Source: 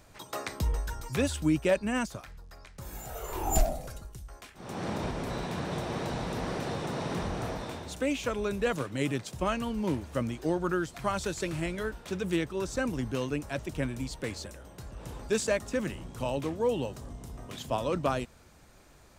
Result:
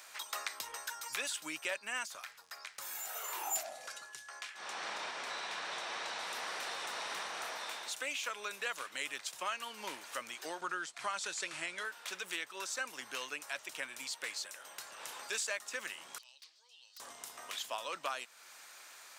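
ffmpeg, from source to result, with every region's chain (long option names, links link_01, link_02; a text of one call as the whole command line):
ffmpeg -i in.wav -filter_complex "[0:a]asettb=1/sr,asplit=3[link_01][link_02][link_03];[link_01]atrim=end=3.634[link_04];[link_02]atrim=start=3.63:end=6.19,asetpts=PTS-STARTPTS,afade=type=in:duration=0.004:curve=qsin,afade=type=out:start_time=2.556:duration=0.004:curve=qsin,lowpass=7400,aeval=exprs='val(0)+0.001*sin(2*PI*1700*n/s)':channel_layout=same[link_05];[link_03]atrim=start=6.186[link_06];[link_04][link_05]acrossfade=duration=0.004:curve1=hsin:curve2=qsin[link_07];[link_07][link_06]acrossfade=duration=0.004:curve1=qsin:curve2=hsin,asettb=1/sr,asplit=3[link_08][link_09][link_10];[link_08]atrim=end=10.614[link_11];[link_09]atrim=start=10.61:end=11.85,asetpts=PTS-STARTPTS,afade=type=in:duration=0.004:curve=qsin,afade=type=out:start_time=1.236:duration=0.004:curve=qsin,lowpass=frequency=9900:width=0.5412,lowpass=frequency=9900:width=1.3066,lowshelf=frequency=260:gain=9,agate=range=-33dB:threshold=-37dB:ratio=3:release=100:detection=peak[link_12];[link_10]atrim=start=11.846[link_13];[link_11][link_12]acrossfade=duration=0.004:curve1=hsin:curve2=qsin[link_14];[link_14][link_13]acrossfade=duration=0.004:curve1=qsin:curve2=hsin,asettb=1/sr,asplit=3[link_15][link_16][link_17];[link_15]atrim=end=16.184[link_18];[link_16]atrim=start=16.18:end=17,asetpts=PTS-STARTPTS,afade=type=in:duration=0.004:curve=qsin,afade=type=out:start_time=0.816:duration=0.004:curve=qsin,acompressor=threshold=-39dB:ratio=3:attack=3.2:release=140:knee=1:detection=peak,bandpass=frequency=4600:width_type=q:width=5.5,aeval=exprs='(mod(422*val(0)+1,2)-1)/422':channel_layout=same[link_19];[link_17]atrim=start=16.996[link_20];[link_18][link_19]acrossfade=duration=0.004:curve1=hsin:curve2=qsin[link_21];[link_21][link_20]acrossfade=duration=0.004:curve1=qsin:curve2=hsin,highpass=1300,acompressor=threshold=-53dB:ratio=2,volume=9.5dB" out.wav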